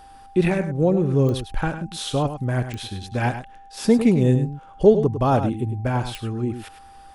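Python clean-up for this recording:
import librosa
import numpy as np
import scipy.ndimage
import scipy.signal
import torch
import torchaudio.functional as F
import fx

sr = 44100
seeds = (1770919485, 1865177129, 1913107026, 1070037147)

y = fx.fix_declick_ar(x, sr, threshold=10.0)
y = fx.notch(y, sr, hz=790.0, q=30.0)
y = fx.fix_echo_inverse(y, sr, delay_ms=103, level_db=-10.0)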